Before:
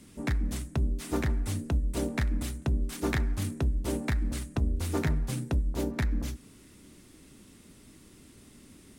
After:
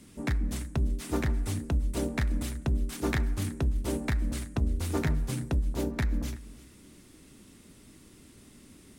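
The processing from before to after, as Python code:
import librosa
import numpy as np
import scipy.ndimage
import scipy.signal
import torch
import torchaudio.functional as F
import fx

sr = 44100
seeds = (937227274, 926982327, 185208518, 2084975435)

y = x + 10.0 ** (-19.0 / 20.0) * np.pad(x, (int(339 * sr / 1000.0), 0))[:len(x)]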